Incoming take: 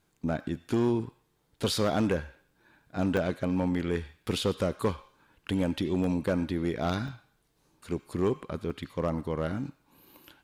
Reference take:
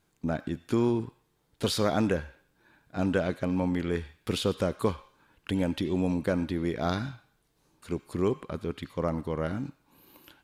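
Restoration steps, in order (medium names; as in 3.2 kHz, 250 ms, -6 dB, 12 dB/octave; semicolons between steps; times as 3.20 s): clip repair -19.5 dBFS; interpolate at 3.17/4.23/6.04/7.08/8.36/8.70 s, 2.1 ms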